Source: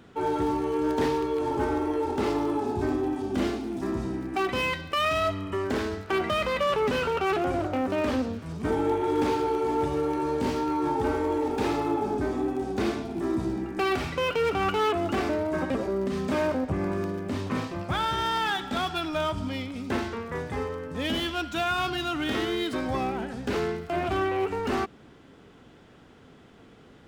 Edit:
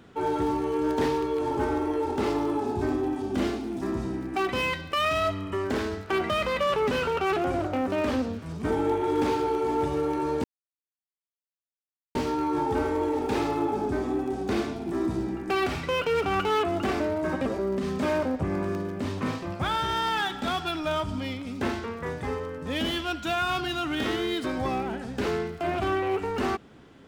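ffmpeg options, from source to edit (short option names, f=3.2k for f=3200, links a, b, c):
-filter_complex "[0:a]asplit=2[a][b];[a]atrim=end=10.44,asetpts=PTS-STARTPTS,afade=t=out:st=10.436:d=0.004:c=hsin,apad=pad_dur=1.71[c];[b]atrim=start=10.44,asetpts=PTS-STARTPTS,afade=t=in:d=0.004:c=hsin[d];[c][d]concat=n=2:v=0:a=1"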